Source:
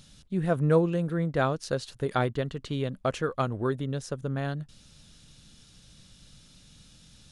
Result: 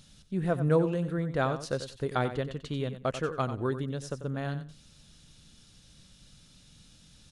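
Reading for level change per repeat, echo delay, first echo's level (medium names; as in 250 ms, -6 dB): -15.5 dB, 92 ms, -11.0 dB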